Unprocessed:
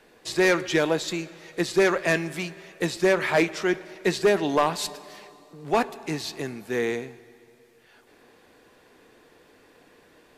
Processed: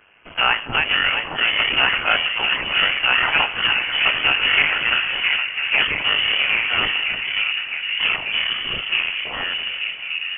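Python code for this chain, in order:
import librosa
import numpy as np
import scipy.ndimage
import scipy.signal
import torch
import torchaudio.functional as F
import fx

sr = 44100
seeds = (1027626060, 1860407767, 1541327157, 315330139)

p1 = fx.cycle_switch(x, sr, every=3, mode='muted')
p2 = fx.low_shelf(p1, sr, hz=450.0, db=-10.0)
p3 = p2 + fx.echo_wet_bandpass(p2, sr, ms=661, feedback_pct=72, hz=750.0, wet_db=-3, dry=0)
p4 = fx.echo_pitch(p3, sr, ms=386, semitones=-5, count=2, db_per_echo=-3.0)
p5 = fx.freq_invert(p4, sr, carrier_hz=3200)
y = p5 * 10.0 ** (7.0 / 20.0)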